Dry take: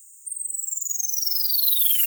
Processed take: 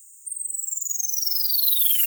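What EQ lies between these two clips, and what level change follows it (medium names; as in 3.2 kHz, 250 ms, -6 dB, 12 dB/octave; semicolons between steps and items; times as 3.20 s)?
high-pass 240 Hz 24 dB/octave; 0.0 dB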